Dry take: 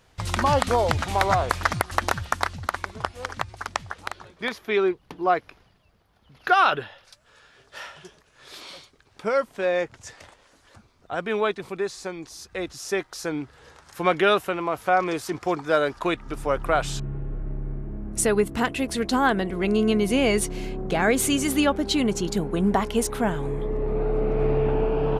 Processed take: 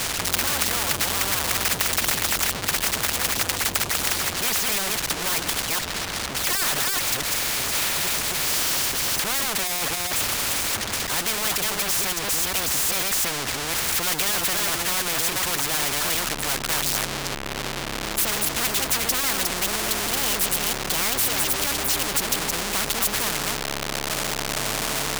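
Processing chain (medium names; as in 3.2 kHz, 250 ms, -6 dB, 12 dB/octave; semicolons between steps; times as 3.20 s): chunks repeated in reverse 241 ms, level -7.5 dB; spectral gate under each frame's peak -25 dB strong; peaking EQ 430 Hz -9 dB 1.5 oct; formant shift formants +5 st; power-law waveshaper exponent 0.35; spectrum-flattening compressor 4:1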